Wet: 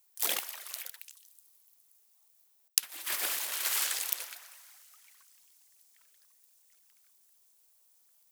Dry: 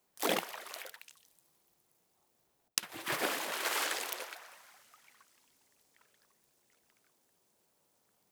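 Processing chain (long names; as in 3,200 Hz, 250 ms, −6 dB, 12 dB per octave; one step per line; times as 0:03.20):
spectral tilt +4.5 dB per octave
level −6.5 dB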